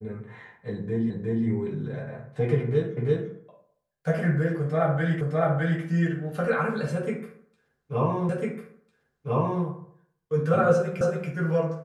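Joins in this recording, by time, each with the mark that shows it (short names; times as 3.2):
1.1 repeat of the last 0.36 s
2.97 repeat of the last 0.34 s
5.21 repeat of the last 0.61 s
8.29 repeat of the last 1.35 s
11.01 repeat of the last 0.28 s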